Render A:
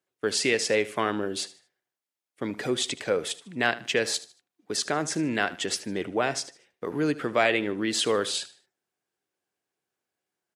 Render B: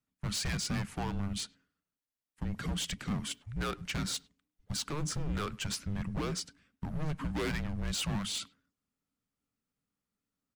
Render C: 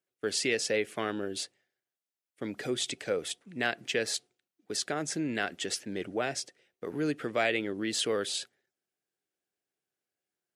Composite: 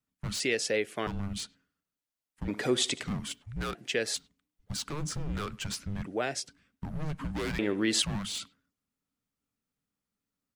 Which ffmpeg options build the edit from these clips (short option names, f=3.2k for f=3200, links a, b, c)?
-filter_complex "[2:a]asplit=3[a][b][c];[0:a]asplit=2[d][e];[1:a]asplit=6[f][g][h][i][j][k];[f]atrim=end=0.402[l];[a]atrim=start=0.398:end=1.072[m];[g]atrim=start=1.068:end=2.482[n];[d]atrim=start=2.478:end=3.032[o];[h]atrim=start=3.028:end=3.752[p];[b]atrim=start=3.748:end=4.162[q];[i]atrim=start=4.158:end=6.062[r];[c]atrim=start=6.058:end=6.472[s];[j]atrim=start=6.468:end=7.592[t];[e]atrim=start=7.588:end=8.022[u];[k]atrim=start=8.018[v];[l][m]acrossfade=d=0.004:c1=hsin:c2=hsin[w];[w][n]acrossfade=d=0.004:c1=hsin:c2=hsin[x];[x][o]acrossfade=d=0.004:c1=hsin:c2=hsin[y];[y][p]acrossfade=d=0.004:c1=hsin:c2=hsin[z];[z][q]acrossfade=d=0.004:c1=hsin:c2=hsin[aa];[aa][r]acrossfade=d=0.004:c1=hsin:c2=hsin[ab];[ab][s]acrossfade=d=0.004:c1=hsin:c2=hsin[ac];[ac][t]acrossfade=d=0.004:c1=hsin:c2=hsin[ad];[ad][u]acrossfade=d=0.004:c1=hsin:c2=hsin[ae];[ae][v]acrossfade=d=0.004:c1=hsin:c2=hsin"